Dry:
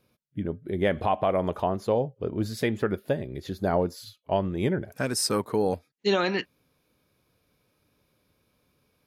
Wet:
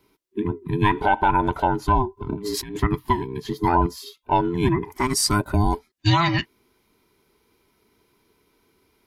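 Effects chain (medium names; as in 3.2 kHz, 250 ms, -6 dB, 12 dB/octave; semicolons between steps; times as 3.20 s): every band turned upside down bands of 500 Hz; 2.17–2.80 s: compressor with a negative ratio -36 dBFS, ratio -1; trim +5.5 dB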